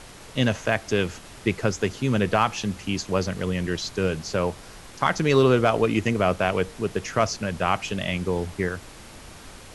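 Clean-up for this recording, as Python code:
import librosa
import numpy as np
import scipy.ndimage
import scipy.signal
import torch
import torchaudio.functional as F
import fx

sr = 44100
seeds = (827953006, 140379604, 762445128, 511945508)

y = fx.fix_declip(x, sr, threshold_db=-7.0)
y = fx.noise_reduce(y, sr, print_start_s=8.94, print_end_s=9.44, reduce_db=25.0)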